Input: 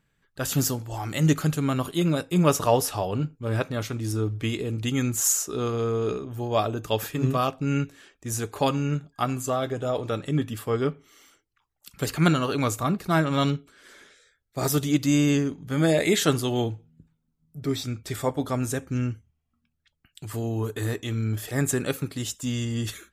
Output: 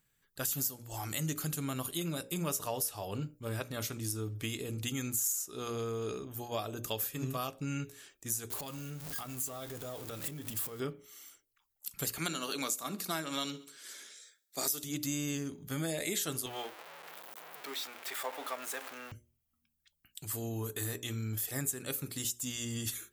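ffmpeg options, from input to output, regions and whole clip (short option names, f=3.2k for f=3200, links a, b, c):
-filter_complex "[0:a]asettb=1/sr,asplit=3[a][b][c];[a]atrim=end=8.504[d];[b]atrim=start=8.5:end=10.8,asetpts=PTS-STARTPTS,afade=t=in:d=0.004:c=qsin,afade=t=out:st=2.296:d=0.004:c=qsin,aeval=exprs='val(0)+0.5*0.0237*sgn(val(0))':c=same,acompressor=threshold=-33dB:ratio=5:attack=3.2:release=140:knee=1:detection=peak[e];[c]atrim=start=10.796[f];[d][e]acrossfade=d=0.004:c1=hsin:c2=qsin[g];[g][f]acrossfade=d=0.004:c1=qsin:c2=hsin,asettb=1/sr,asplit=3[h][i][j];[h]atrim=end=12.184[k];[i]atrim=start=12.18:end=14.84,asetpts=PTS-STARTPTS,afade=t=in:d=0.004:c=qsin,afade=t=out:st=2.656:d=0.004:c=qsin,highpass=f=190:w=0.5412,highpass=f=190:w=1.3066,equalizer=f=5.3k:w=0.58:g=6.5,aecho=1:1:68|136|204:0.075|0.0352|0.0166,atrim=end_sample=117306[l];[j]atrim=start=14.836[m];[k][l]acrossfade=d=0.004:c1=hsin:c2=qsin[n];[n][m]acrossfade=d=0.004:c1=qsin:c2=hsin,asettb=1/sr,asplit=3[o][p][q];[o]atrim=end=16.464[r];[p]atrim=start=16.46:end=19.12,asetpts=PTS-STARTPTS,afade=t=in:d=0.004:c=qsin,afade=t=out:st=2.656:d=0.004:c=qsin,aeval=exprs='val(0)+0.5*0.0422*sgn(val(0))':c=same,highpass=f=200:w=0.5412,highpass=f=200:w=1.3066,acrossover=split=530 3300:gain=0.0708 1 0.141[s][t][u];[s][t][u]amix=inputs=3:normalize=0[v];[q]atrim=start=19.116[w];[r][v]acrossfade=d=0.004:c1=hsin:c2=qsin[x];[x][w]acrossfade=d=0.004:c1=qsin:c2=hsin,aemphasis=mode=production:type=75fm,bandreject=f=60:t=h:w=6,bandreject=f=120:t=h:w=6,bandreject=f=180:t=h:w=6,bandreject=f=240:t=h:w=6,bandreject=f=300:t=h:w=6,bandreject=f=360:t=h:w=6,bandreject=f=420:t=h:w=6,bandreject=f=480:t=h:w=6,bandreject=f=540:t=h:w=6,bandreject=f=600:t=h:w=6,acompressor=threshold=-26dB:ratio=4,volume=-7dB"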